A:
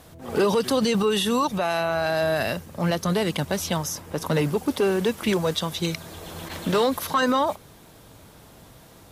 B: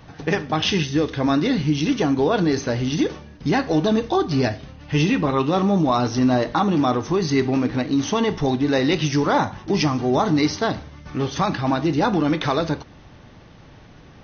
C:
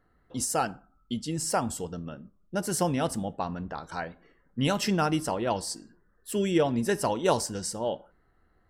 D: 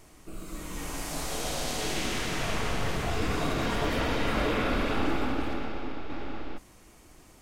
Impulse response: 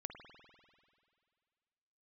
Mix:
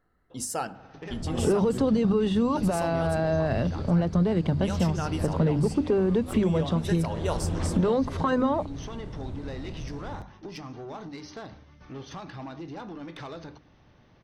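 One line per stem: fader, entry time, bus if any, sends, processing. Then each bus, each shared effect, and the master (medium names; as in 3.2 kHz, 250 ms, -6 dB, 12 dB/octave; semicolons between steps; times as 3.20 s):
0.0 dB, 1.10 s, no send, steep low-pass 9.5 kHz 36 dB/octave; tilt EQ -4.5 dB/octave
-12.0 dB, 0.75 s, no send, treble shelf 4.8 kHz -3.5 dB; compression 6:1, threshold -21 dBFS, peak gain reduction 7.5 dB; saturation -20 dBFS, distortion -17 dB
-5.5 dB, 0.00 s, send -6 dB, none
-12.5 dB, 1.05 s, no send, four-pole ladder low-pass 4.8 kHz, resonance 85%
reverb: on, RT60 2.2 s, pre-delay 49 ms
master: hum notches 50/100/150/200/250/300 Hz; compression 2.5:1, threshold -24 dBFS, peak gain reduction 9.5 dB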